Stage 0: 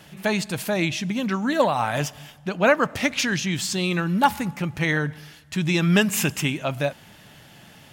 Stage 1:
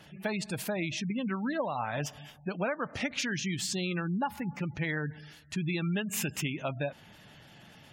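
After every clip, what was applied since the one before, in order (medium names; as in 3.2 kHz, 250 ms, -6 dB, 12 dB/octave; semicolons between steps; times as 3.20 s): spectral gate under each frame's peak -25 dB strong; compression 6:1, threshold -23 dBFS, peak gain reduction 10.5 dB; trim -5.5 dB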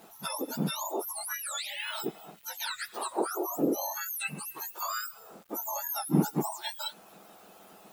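spectrum inverted on a logarithmic axis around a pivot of 1.5 kHz; bit crusher 10-bit; trim +2 dB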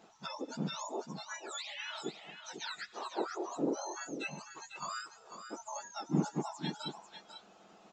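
delay 496 ms -9 dB; resampled via 16 kHz; trim -6 dB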